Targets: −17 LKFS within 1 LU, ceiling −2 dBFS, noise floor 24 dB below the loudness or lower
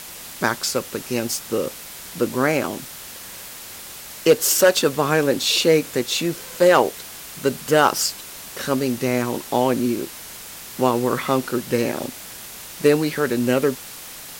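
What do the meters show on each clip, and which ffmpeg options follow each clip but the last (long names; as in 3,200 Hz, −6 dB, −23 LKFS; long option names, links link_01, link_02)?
background noise floor −38 dBFS; target noise floor −45 dBFS; integrated loudness −20.5 LKFS; sample peak −3.0 dBFS; target loudness −17.0 LKFS
→ -af "afftdn=noise_reduction=7:noise_floor=-38"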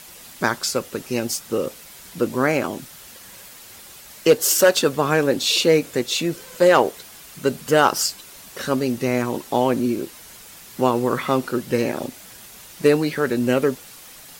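background noise floor −43 dBFS; target noise floor −45 dBFS
→ -af "afftdn=noise_reduction=6:noise_floor=-43"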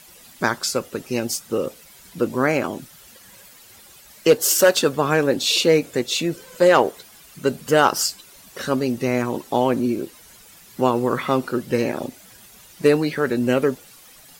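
background noise floor −48 dBFS; integrated loudness −20.5 LKFS; sample peak −3.0 dBFS; target loudness −17.0 LKFS
→ -af "volume=3.5dB,alimiter=limit=-2dB:level=0:latency=1"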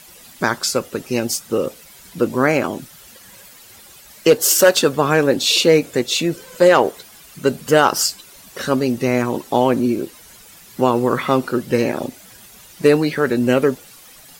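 integrated loudness −17.5 LKFS; sample peak −2.0 dBFS; background noise floor −44 dBFS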